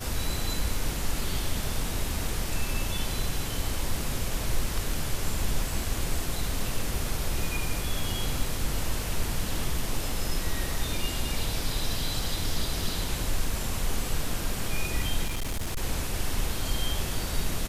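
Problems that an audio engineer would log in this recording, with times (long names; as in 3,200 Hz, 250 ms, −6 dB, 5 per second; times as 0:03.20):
0:15.26–0:15.82: clipping −26 dBFS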